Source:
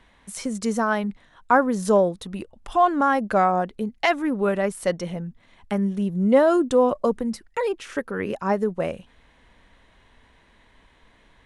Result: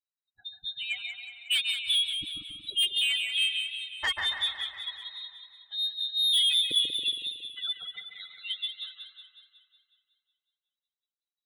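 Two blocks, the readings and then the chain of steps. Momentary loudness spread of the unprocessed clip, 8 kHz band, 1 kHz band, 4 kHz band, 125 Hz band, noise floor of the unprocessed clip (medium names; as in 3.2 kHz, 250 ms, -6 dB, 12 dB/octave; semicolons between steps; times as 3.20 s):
13 LU, -1.0 dB, -26.5 dB, +17.0 dB, under -25 dB, -58 dBFS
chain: expander on every frequency bin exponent 3; on a send: feedback echo behind a high-pass 138 ms, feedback 49%, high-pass 1.6 kHz, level -5 dB; on the sum: frequency inversion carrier 3.9 kHz; saturation -21.5 dBFS, distortion -10 dB; modulated delay 184 ms, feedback 56%, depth 63 cents, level -8 dB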